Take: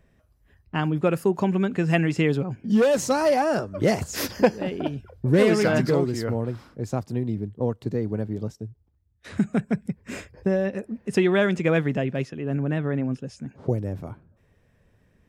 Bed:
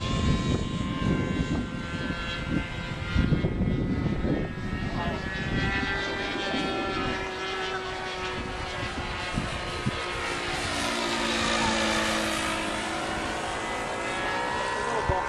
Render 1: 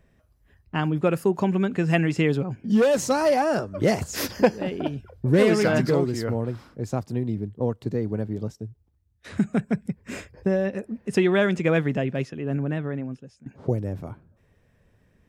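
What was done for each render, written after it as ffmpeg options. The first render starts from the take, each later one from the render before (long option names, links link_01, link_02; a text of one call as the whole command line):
ffmpeg -i in.wav -filter_complex "[0:a]asplit=2[link_01][link_02];[link_01]atrim=end=13.46,asetpts=PTS-STARTPTS,afade=type=out:start_time=12.52:duration=0.94:silence=0.141254[link_03];[link_02]atrim=start=13.46,asetpts=PTS-STARTPTS,afade=type=in:duration=0.004:curve=hsin:silence=0.141254[link_04];[link_03][link_04]concat=n=2:v=0:a=1" out.wav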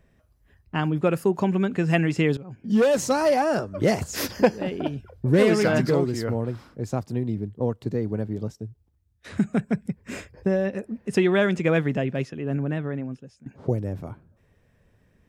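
ffmpeg -i in.wav -filter_complex "[0:a]asplit=2[link_01][link_02];[link_01]atrim=end=2.37,asetpts=PTS-STARTPTS,afade=type=out:start_time=2.366:duration=0.004:curve=hsin:silence=0.105925[link_03];[link_02]atrim=start=2.37,asetpts=PTS-STARTPTS,afade=type=in:duration=0.43:silence=0.105925[link_04];[link_03][link_04]concat=n=2:v=0:a=1" out.wav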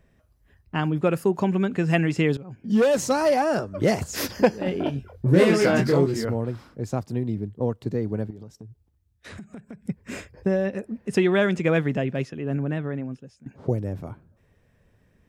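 ffmpeg -i in.wav -filter_complex "[0:a]asettb=1/sr,asplit=3[link_01][link_02][link_03];[link_01]atrim=end=4.644[link_04];[link_02]atrim=start=4.64:end=6.25,asetpts=PTS-STARTPTS,afade=type=in:duration=0.004:curve=qsin,afade=type=out:start_time=1.606:duration=0.004:curve=qsin,asplit=2[link_05][link_06];[link_06]adelay=22,volume=-3dB[link_07];[link_05][link_07]amix=inputs=2:normalize=0,atrim=end_sample=71001[link_08];[link_03]atrim=start=6.246[link_09];[link_04][link_08]acrossfade=duration=0.004:curve1=hsin:curve2=qsin[link_10];[link_10][link_09]acrossfade=duration=0.004:curve1=qsin:curve2=hsin,asettb=1/sr,asplit=3[link_11][link_12][link_13];[link_11]atrim=end=8.304[link_14];[link_12]atrim=start=8.3:end=9.88,asetpts=PTS-STARTPTS,afade=type=in:duration=0.004:curve=qsin,afade=type=out:start_time=1.576:duration=0.004:curve=qsin,acompressor=threshold=-36dB:ratio=16:attack=3.2:release=140:knee=1:detection=peak[link_15];[link_13]atrim=start=9.876[link_16];[link_14][link_15]acrossfade=duration=0.004:curve1=hsin:curve2=qsin[link_17];[link_17][link_16]acrossfade=duration=0.004:curve1=qsin:curve2=hsin" out.wav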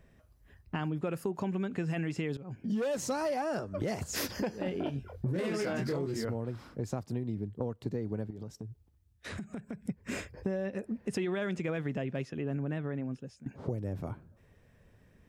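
ffmpeg -i in.wav -af "alimiter=limit=-14dB:level=0:latency=1:release=21,acompressor=threshold=-32dB:ratio=4" out.wav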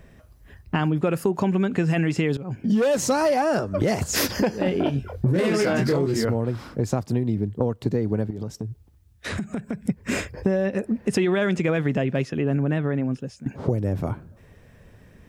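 ffmpeg -i in.wav -af "volume=11.5dB" out.wav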